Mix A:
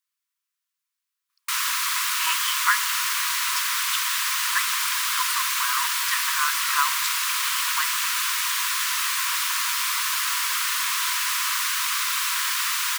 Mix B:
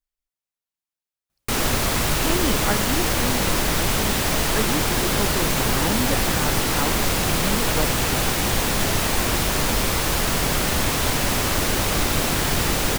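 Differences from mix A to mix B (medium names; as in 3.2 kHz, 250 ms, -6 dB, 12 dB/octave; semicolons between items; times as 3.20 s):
speech -9.0 dB; master: remove brick-wall FIR high-pass 940 Hz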